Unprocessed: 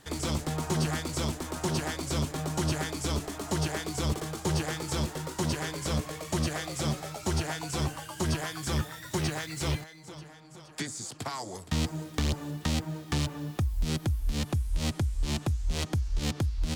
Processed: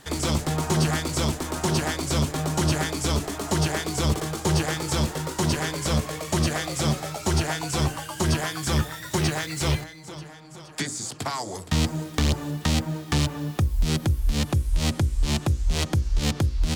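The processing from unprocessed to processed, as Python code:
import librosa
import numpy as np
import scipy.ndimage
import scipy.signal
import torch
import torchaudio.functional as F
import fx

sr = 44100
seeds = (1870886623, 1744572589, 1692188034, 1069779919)

y = fx.hum_notches(x, sr, base_hz=60, count=9)
y = y * librosa.db_to_amplitude(6.5)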